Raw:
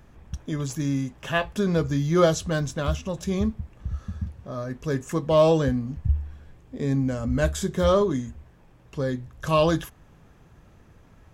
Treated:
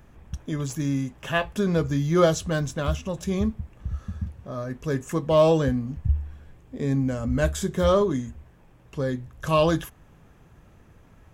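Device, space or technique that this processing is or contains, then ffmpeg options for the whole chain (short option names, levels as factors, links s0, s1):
exciter from parts: -filter_complex "[0:a]asplit=2[s0][s1];[s1]highpass=3900,asoftclip=type=tanh:threshold=0.015,highpass=f=2700:w=0.5412,highpass=f=2700:w=1.3066,volume=0.316[s2];[s0][s2]amix=inputs=2:normalize=0"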